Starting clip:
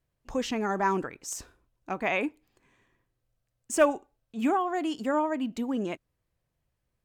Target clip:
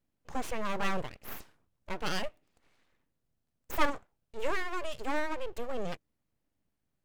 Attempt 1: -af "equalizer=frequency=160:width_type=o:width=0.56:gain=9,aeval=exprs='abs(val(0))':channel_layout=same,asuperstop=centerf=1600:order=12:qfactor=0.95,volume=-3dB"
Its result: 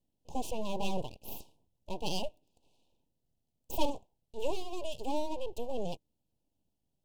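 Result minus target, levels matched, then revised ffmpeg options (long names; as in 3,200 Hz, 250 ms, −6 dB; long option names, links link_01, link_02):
2,000 Hz band −11.5 dB
-af "equalizer=frequency=160:width_type=o:width=0.56:gain=9,aeval=exprs='abs(val(0))':channel_layout=same,volume=-3dB"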